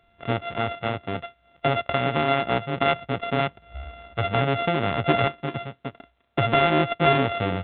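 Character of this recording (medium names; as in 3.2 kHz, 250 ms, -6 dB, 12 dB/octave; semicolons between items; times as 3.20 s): a buzz of ramps at a fixed pitch in blocks of 64 samples; A-law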